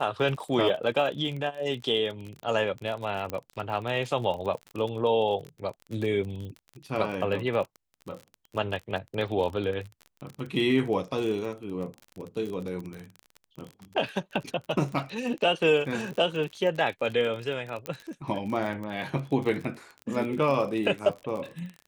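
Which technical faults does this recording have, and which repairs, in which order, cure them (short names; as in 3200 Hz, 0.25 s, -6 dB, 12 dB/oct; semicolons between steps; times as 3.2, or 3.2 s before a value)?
crackle 33/s -33 dBFS
3.3 pop -18 dBFS
6.45 pop -31 dBFS
17.86 pop -18 dBFS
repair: de-click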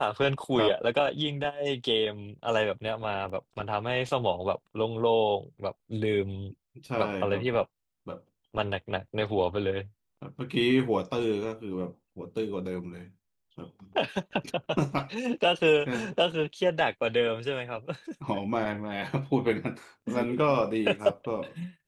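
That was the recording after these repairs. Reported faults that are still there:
3.3 pop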